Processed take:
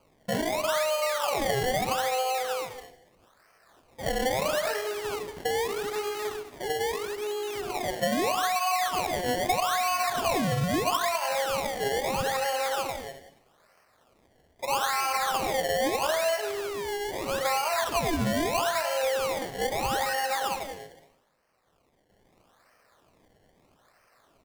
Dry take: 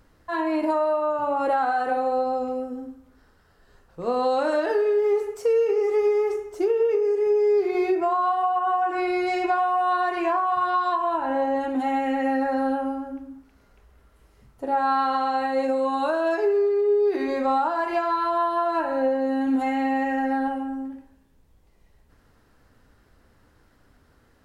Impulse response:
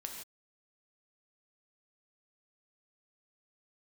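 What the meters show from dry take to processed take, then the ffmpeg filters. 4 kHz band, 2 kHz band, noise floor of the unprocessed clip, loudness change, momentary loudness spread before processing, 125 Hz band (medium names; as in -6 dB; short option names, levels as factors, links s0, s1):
+10.5 dB, +1.0 dB, -60 dBFS, -4.5 dB, 7 LU, no reading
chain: -filter_complex "[0:a]highpass=f=600:w=0.5412,highpass=f=600:w=1.3066,aecho=1:1:1.7:0.39,acompressor=threshold=0.0501:ratio=6,acrusher=samples=24:mix=1:aa=0.000001:lfo=1:lforange=24:lforate=0.78,asplit=4[s0][s1][s2][s3];[s1]adelay=95,afreqshift=-55,volume=0.106[s4];[s2]adelay=190,afreqshift=-110,volume=0.0468[s5];[s3]adelay=285,afreqshift=-165,volume=0.0204[s6];[s0][s4][s5][s6]amix=inputs=4:normalize=0,asplit=2[s7][s8];[1:a]atrim=start_sample=2205,asetrate=31752,aresample=44100[s9];[s8][s9]afir=irnorm=-1:irlink=0,volume=0.335[s10];[s7][s10]amix=inputs=2:normalize=0"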